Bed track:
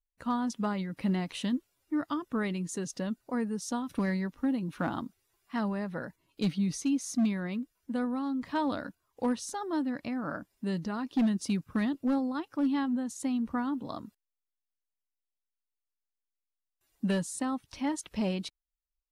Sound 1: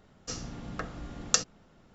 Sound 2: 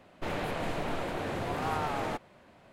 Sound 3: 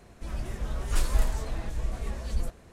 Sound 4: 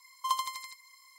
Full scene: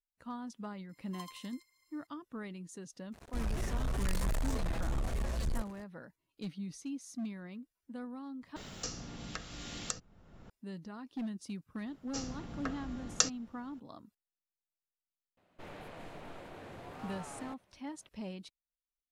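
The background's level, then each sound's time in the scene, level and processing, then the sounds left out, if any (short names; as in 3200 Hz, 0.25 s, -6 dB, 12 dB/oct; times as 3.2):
bed track -12 dB
0.89 add 4 -15.5 dB + bell 590 Hz -13.5 dB 0.98 oct
3.12 add 3 -16 dB + sample leveller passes 5
8.56 replace with 1 -7 dB + three-band squash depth 100%
11.86 add 1 -3.5 dB
15.37 add 2 -14.5 dB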